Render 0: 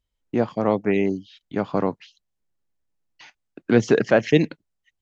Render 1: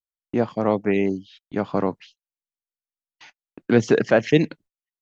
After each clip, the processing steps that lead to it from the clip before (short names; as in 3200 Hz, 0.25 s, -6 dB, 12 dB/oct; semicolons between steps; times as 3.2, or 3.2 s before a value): gate -48 dBFS, range -33 dB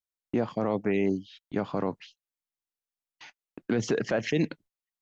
limiter -15 dBFS, peak gain reduction 11.5 dB; gain -1.5 dB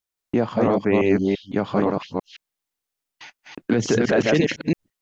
reverse delay 0.169 s, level -1 dB; gain +6.5 dB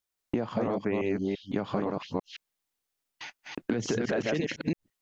compressor 6:1, threshold -26 dBFS, peak gain reduction 12 dB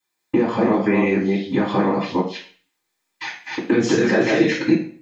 reverb RT60 0.50 s, pre-delay 3 ms, DRR -15 dB